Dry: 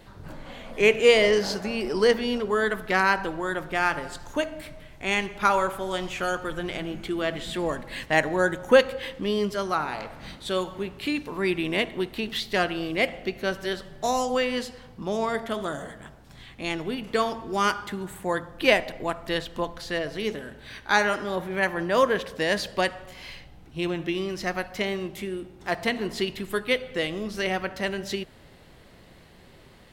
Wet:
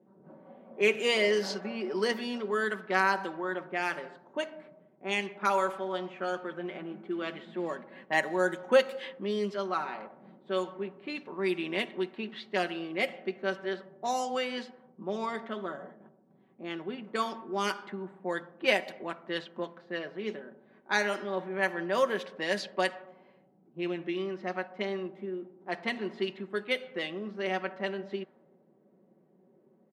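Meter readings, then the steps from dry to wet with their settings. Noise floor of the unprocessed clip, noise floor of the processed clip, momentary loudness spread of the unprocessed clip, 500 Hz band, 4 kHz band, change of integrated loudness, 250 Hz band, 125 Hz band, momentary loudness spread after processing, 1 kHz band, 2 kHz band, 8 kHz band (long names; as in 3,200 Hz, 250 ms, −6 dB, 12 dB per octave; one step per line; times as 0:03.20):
−51 dBFS, −64 dBFS, 13 LU, −6.0 dB, −7.0 dB, −6.0 dB, −6.5 dB, −9.0 dB, 13 LU, −5.5 dB, −6.0 dB, −8.0 dB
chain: low-pass that shuts in the quiet parts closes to 400 Hz, open at −19.5 dBFS
high-pass filter 200 Hz 24 dB per octave
comb filter 5.3 ms, depth 54%
level −7 dB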